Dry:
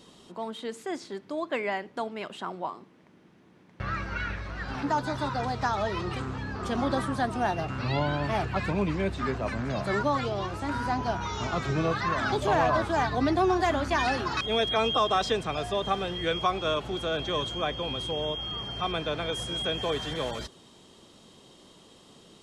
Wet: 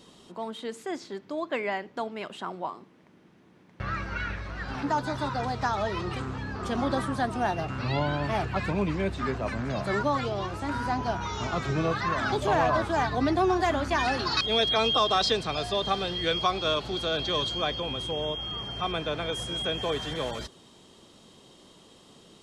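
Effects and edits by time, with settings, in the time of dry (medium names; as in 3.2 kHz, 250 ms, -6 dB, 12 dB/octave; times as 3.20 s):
0.91–2.14 s: peaking EQ 9.3 kHz -7.5 dB 0.29 oct
14.19–17.80 s: peaking EQ 4.4 kHz +14 dB 0.5 oct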